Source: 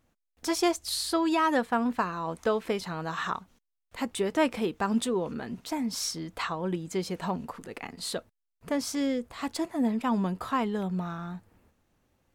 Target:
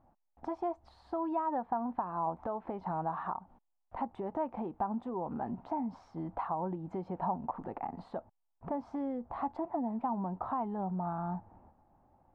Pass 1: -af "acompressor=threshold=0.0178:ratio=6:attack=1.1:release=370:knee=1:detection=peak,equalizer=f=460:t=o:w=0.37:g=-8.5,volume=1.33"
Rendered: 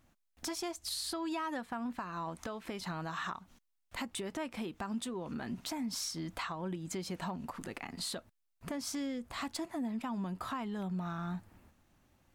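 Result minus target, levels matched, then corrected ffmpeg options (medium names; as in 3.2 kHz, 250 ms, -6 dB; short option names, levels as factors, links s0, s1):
1 kHz band -5.5 dB
-af "acompressor=threshold=0.0178:ratio=6:attack=1.1:release=370:knee=1:detection=peak,lowpass=f=830:t=q:w=4.2,equalizer=f=460:t=o:w=0.37:g=-8.5,volume=1.33"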